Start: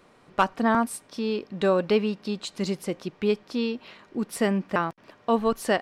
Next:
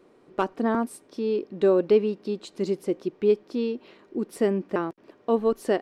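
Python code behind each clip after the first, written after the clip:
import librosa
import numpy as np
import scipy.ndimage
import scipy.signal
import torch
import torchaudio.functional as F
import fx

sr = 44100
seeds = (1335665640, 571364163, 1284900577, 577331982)

y = fx.peak_eq(x, sr, hz=360.0, db=14.5, octaves=1.2)
y = y * 10.0 ** (-8.0 / 20.0)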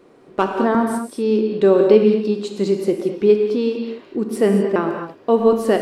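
y = fx.rev_gated(x, sr, seeds[0], gate_ms=260, shape='flat', drr_db=3.0)
y = y * 10.0 ** (6.5 / 20.0)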